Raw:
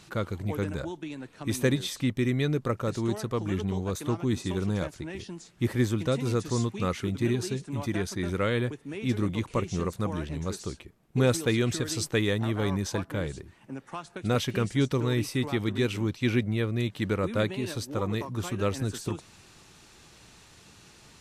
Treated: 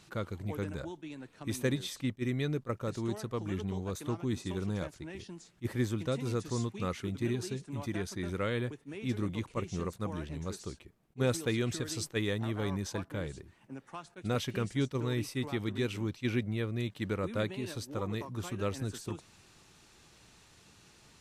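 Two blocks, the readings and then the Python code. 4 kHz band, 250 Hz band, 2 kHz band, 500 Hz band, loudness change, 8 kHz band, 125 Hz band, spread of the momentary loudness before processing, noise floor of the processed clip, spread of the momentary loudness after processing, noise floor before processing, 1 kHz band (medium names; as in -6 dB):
-6.0 dB, -6.0 dB, -6.0 dB, -6.0 dB, -6.0 dB, -6.0 dB, -6.0 dB, 10 LU, -61 dBFS, 10 LU, -55 dBFS, -6.0 dB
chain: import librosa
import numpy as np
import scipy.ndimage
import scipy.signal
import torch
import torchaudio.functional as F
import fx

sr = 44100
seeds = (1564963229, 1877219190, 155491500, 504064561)

y = fx.attack_slew(x, sr, db_per_s=560.0)
y = F.gain(torch.from_numpy(y), -6.0).numpy()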